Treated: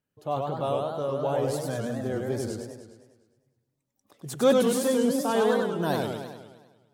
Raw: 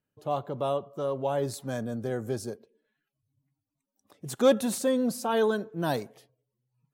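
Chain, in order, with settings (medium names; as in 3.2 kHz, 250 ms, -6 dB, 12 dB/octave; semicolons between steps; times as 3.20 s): modulated delay 102 ms, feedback 59%, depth 195 cents, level -3 dB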